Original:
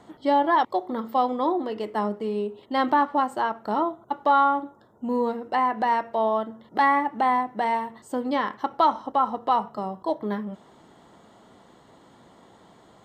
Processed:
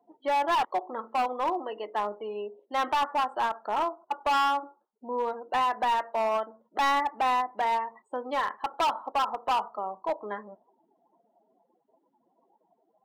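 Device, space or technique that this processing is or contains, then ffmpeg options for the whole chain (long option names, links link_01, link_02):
megaphone: -af "afftdn=noise_reduction=35:noise_floor=-43,highpass=570,lowpass=3000,equalizer=frequency=2700:width_type=o:width=0.2:gain=5,asoftclip=type=hard:threshold=-22dB"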